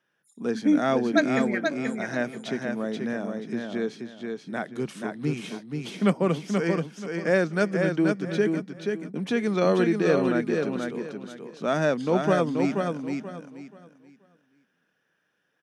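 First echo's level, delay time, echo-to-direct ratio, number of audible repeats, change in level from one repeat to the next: -4.5 dB, 0.481 s, -4.0 dB, 3, -11.5 dB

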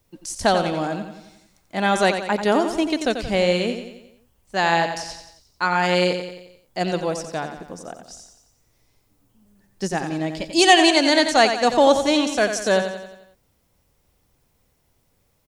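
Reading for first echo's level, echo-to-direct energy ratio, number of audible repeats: -8.5 dB, -7.0 dB, 5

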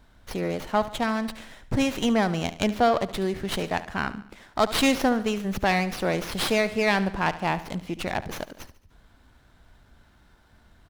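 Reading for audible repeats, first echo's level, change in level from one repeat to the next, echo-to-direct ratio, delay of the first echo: 4, -15.0 dB, -6.5 dB, -14.0 dB, 72 ms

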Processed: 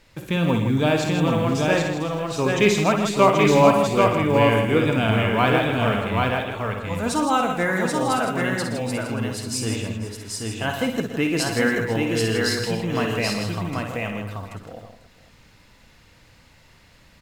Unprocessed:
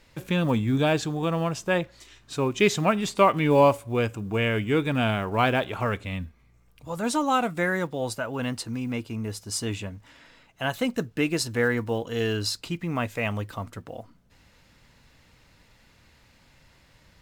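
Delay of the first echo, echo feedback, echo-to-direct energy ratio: 53 ms, no steady repeat, 1.0 dB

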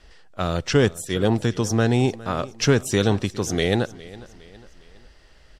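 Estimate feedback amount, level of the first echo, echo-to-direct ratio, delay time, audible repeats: 45%, -19.5 dB, -18.5 dB, 0.41 s, 3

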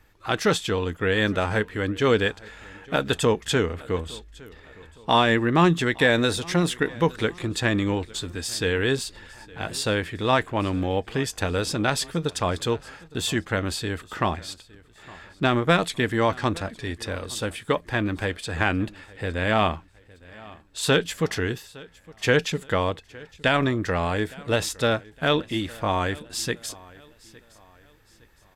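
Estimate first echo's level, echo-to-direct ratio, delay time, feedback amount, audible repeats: -22.5 dB, -22.0 dB, 0.862 s, 40%, 2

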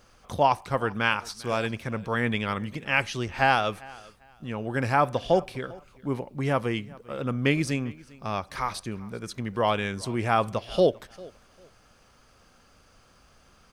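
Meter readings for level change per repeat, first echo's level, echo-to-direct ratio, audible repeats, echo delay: -12.5 dB, -22.5 dB, -22.5 dB, 2, 0.398 s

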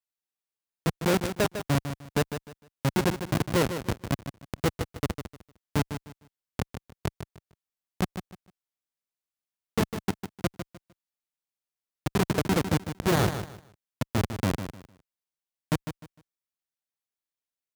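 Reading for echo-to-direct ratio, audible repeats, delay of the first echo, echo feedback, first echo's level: -9.0 dB, 3, 0.152 s, 25%, -9.5 dB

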